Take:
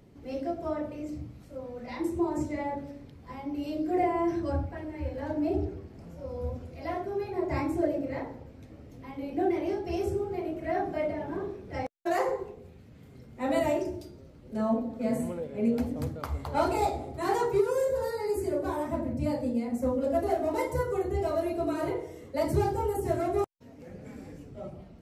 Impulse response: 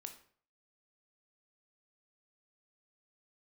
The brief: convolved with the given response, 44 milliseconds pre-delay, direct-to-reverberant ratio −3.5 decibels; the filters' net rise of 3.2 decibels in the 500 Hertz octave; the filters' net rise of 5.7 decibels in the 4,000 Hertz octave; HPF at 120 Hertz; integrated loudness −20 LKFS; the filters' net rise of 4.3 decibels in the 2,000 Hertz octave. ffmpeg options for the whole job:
-filter_complex "[0:a]highpass=120,equalizer=frequency=500:width_type=o:gain=4,equalizer=frequency=2000:width_type=o:gain=3.5,equalizer=frequency=4000:width_type=o:gain=6,asplit=2[link_01][link_02];[1:a]atrim=start_sample=2205,adelay=44[link_03];[link_02][link_03]afir=irnorm=-1:irlink=0,volume=8.5dB[link_04];[link_01][link_04]amix=inputs=2:normalize=0,volume=3.5dB"

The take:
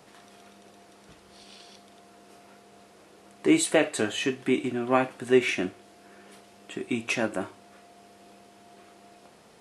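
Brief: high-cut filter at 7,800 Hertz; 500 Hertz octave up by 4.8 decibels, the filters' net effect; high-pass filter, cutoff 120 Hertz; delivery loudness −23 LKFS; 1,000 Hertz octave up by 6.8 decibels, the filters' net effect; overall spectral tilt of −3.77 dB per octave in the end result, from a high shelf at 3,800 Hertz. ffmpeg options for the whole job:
ffmpeg -i in.wav -af "highpass=120,lowpass=7800,equalizer=frequency=500:width_type=o:gain=5,equalizer=frequency=1000:width_type=o:gain=7,highshelf=frequency=3800:gain=3" out.wav

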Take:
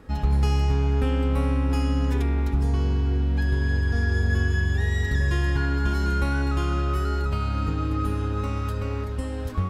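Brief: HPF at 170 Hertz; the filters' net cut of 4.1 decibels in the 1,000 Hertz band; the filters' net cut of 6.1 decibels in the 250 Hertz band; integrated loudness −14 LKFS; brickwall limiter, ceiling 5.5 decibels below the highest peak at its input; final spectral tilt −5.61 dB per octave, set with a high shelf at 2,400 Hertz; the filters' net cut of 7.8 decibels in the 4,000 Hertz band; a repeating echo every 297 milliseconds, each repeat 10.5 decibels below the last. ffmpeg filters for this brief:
ffmpeg -i in.wav -af "highpass=170,equalizer=frequency=250:width_type=o:gain=-6,equalizer=frequency=1000:width_type=o:gain=-3.5,highshelf=frequency=2400:gain=-6.5,equalizer=frequency=4000:width_type=o:gain=-4.5,alimiter=level_in=1dB:limit=-24dB:level=0:latency=1,volume=-1dB,aecho=1:1:297|594|891:0.299|0.0896|0.0269,volume=21dB" out.wav

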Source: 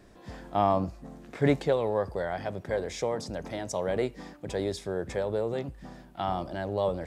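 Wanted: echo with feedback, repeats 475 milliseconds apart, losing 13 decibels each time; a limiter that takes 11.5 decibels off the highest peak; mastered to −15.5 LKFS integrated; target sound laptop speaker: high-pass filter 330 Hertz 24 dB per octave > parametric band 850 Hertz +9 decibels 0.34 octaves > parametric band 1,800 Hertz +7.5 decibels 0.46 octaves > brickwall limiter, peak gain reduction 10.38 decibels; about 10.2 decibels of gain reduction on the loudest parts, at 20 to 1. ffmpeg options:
ffmpeg -i in.wav -af "acompressor=threshold=-28dB:ratio=20,alimiter=level_in=5dB:limit=-24dB:level=0:latency=1,volume=-5dB,highpass=frequency=330:width=0.5412,highpass=frequency=330:width=1.3066,equalizer=frequency=850:width_type=o:width=0.34:gain=9,equalizer=frequency=1800:width_type=o:width=0.46:gain=7.5,aecho=1:1:475|950|1425:0.224|0.0493|0.0108,volume=29dB,alimiter=limit=-6dB:level=0:latency=1" out.wav

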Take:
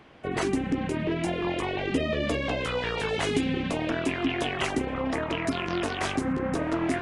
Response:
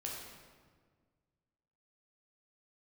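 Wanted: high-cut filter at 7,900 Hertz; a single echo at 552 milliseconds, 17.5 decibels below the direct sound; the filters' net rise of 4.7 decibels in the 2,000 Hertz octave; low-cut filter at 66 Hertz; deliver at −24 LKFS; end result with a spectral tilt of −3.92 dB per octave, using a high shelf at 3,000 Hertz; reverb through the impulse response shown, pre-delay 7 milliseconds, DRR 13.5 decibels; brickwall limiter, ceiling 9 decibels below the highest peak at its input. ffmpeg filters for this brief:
-filter_complex "[0:a]highpass=66,lowpass=7900,equalizer=frequency=2000:width_type=o:gain=8.5,highshelf=frequency=3000:gain=-7.5,alimiter=limit=-21dB:level=0:latency=1,aecho=1:1:552:0.133,asplit=2[link_01][link_02];[1:a]atrim=start_sample=2205,adelay=7[link_03];[link_02][link_03]afir=irnorm=-1:irlink=0,volume=-13.5dB[link_04];[link_01][link_04]amix=inputs=2:normalize=0,volume=6dB"

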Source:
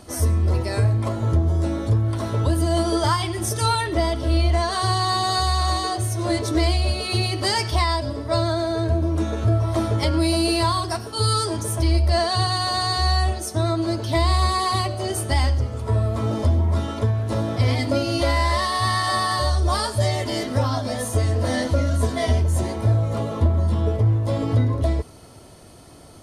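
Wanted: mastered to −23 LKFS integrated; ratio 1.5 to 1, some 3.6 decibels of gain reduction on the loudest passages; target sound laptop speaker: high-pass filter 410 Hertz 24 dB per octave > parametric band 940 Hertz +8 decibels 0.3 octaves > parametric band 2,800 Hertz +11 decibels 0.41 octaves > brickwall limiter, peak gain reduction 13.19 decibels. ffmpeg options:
ffmpeg -i in.wav -af "acompressor=threshold=-24dB:ratio=1.5,highpass=frequency=410:width=0.5412,highpass=frequency=410:width=1.3066,equalizer=frequency=940:width_type=o:width=0.3:gain=8,equalizer=frequency=2800:width_type=o:width=0.41:gain=11,volume=8dB,alimiter=limit=-14dB:level=0:latency=1" out.wav

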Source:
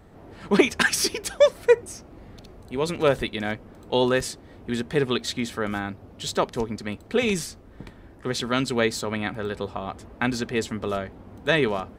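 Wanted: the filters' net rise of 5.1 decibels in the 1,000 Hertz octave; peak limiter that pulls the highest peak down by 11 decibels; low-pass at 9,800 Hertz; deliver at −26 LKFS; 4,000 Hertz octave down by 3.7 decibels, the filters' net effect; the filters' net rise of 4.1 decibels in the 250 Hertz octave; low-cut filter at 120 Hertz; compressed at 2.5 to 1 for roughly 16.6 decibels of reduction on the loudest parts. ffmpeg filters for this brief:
ffmpeg -i in.wav -af "highpass=120,lowpass=9800,equalizer=frequency=250:width_type=o:gain=5,equalizer=frequency=1000:width_type=o:gain=6.5,equalizer=frequency=4000:width_type=o:gain=-5,acompressor=threshold=-35dB:ratio=2.5,volume=11.5dB,alimiter=limit=-12.5dB:level=0:latency=1" out.wav

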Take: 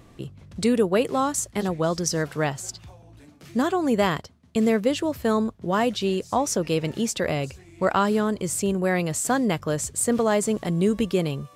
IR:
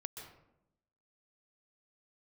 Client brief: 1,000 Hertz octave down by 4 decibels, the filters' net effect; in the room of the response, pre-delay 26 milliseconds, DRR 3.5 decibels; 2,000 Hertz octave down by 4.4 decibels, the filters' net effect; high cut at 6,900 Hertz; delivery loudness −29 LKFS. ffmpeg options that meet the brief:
-filter_complex "[0:a]lowpass=6900,equalizer=frequency=1000:width_type=o:gain=-4.5,equalizer=frequency=2000:width_type=o:gain=-4,asplit=2[link_01][link_02];[1:a]atrim=start_sample=2205,adelay=26[link_03];[link_02][link_03]afir=irnorm=-1:irlink=0,volume=-1dB[link_04];[link_01][link_04]amix=inputs=2:normalize=0,volume=-5dB"

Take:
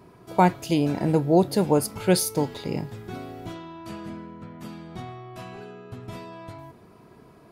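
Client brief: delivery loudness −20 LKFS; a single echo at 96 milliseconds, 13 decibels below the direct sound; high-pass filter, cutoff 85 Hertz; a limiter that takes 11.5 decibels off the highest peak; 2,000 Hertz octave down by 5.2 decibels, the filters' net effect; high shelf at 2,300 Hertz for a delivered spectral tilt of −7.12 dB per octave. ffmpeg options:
ffmpeg -i in.wav -af "highpass=85,equalizer=frequency=2000:width_type=o:gain=-4,highshelf=frequency=2300:gain=-6.5,alimiter=limit=-16.5dB:level=0:latency=1,aecho=1:1:96:0.224,volume=11.5dB" out.wav

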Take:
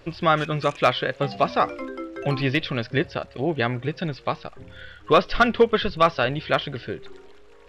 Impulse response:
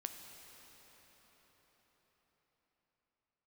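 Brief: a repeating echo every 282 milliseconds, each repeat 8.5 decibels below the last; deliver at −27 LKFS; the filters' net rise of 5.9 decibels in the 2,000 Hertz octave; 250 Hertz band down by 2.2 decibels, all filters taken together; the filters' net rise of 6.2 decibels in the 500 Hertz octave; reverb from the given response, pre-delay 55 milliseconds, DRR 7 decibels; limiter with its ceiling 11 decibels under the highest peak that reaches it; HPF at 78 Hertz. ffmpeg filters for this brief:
-filter_complex "[0:a]highpass=78,equalizer=frequency=250:width_type=o:gain=-6.5,equalizer=frequency=500:width_type=o:gain=8.5,equalizer=frequency=2000:width_type=o:gain=7.5,alimiter=limit=-10dB:level=0:latency=1,aecho=1:1:282|564|846|1128:0.376|0.143|0.0543|0.0206,asplit=2[link_01][link_02];[1:a]atrim=start_sample=2205,adelay=55[link_03];[link_02][link_03]afir=irnorm=-1:irlink=0,volume=-5dB[link_04];[link_01][link_04]amix=inputs=2:normalize=0,volume=-4.5dB"

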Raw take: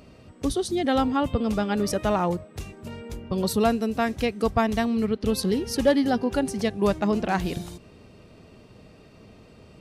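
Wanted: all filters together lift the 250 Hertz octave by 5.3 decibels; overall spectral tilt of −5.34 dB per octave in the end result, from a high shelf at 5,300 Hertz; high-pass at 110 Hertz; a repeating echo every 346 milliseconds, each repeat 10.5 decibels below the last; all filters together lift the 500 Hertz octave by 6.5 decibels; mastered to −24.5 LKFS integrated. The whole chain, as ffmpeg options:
ffmpeg -i in.wav -af "highpass=110,equalizer=frequency=250:width_type=o:gain=5,equalizer=frequency=500:width_type=o:gain=6.5,highshelf=frequency=5300:gain=8.5,aecho=1:1:346|692|1038:0.299|0.0896|0.0269,volume=-5dB" out.wav

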